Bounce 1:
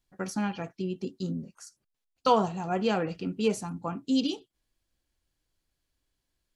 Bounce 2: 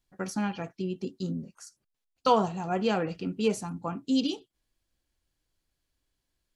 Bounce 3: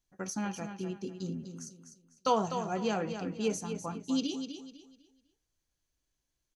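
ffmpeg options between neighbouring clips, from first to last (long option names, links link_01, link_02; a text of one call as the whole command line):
ffmpeg -i in.wav -af anull out.wav
ffmpeg -i in.wav -af "equalizer=frequency=6200:width=7.9:gain=13.5,aecho=1:1:250|500|750|1000:0.376|0.113|0.0338|0.0101,volume=-5dB" out.wav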